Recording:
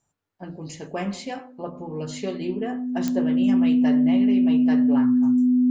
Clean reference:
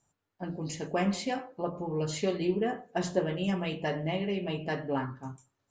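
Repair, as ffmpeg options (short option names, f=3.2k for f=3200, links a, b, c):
-af "adeclick=t=4,bandreject=f=250:w=30"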